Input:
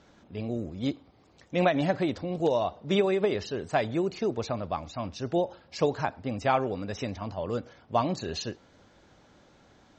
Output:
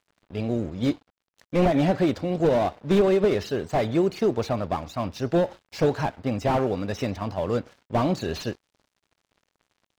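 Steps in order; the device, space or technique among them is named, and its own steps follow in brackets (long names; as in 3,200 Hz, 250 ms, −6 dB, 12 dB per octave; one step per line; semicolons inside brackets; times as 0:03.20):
0:00.74–0:01.57: double-tracking delay 17 ms −11 dB
early transistor amplifier (dead-zone distortion −52 dBFS; slew-rate limiting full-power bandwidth 35 Hz)
level +6.5 dB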